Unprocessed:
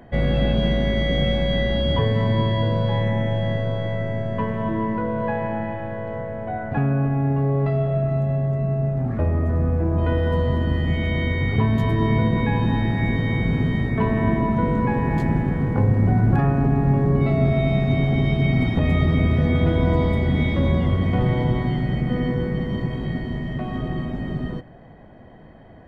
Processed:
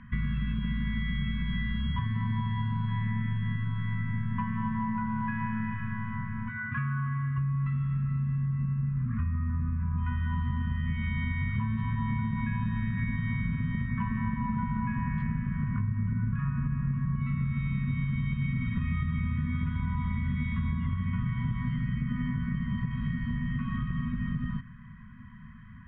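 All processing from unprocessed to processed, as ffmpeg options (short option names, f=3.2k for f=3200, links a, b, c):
-filter_complex "[0:a]asettb=1/sr,asplit=3[a][b][c];[a]atrim=end=6.494[d];[b]atrim=start=6.49:end=7.38,asetpts=PTS-STARTPTS,afade=t=in:d=0.004:c=qsin,afade=t=out:st=0.886:d=0.004:c=qsin,highpass=160,aecho=1:1:2.6:0.85,atrim=end_sample=39249[e];[c]atrim=start=7.376[f];[d][e]acrossfade=d=0.004:c1=hsin:c2=qsin[g];[g][f]acrossfade=d=0.004:c1=qsin:c2=hsin,lowpass=f=2.7k:w=0.5412,lowpass=f=2.7k:w=1.3066,afftfilt=real='re*(1-between(b*sr/4096,250,960))':imag='im*(1-between(b*sr/4096,250,960))':win_size=4096:overlap=0.75,acompressor=threshold=-27dB:ratio=6"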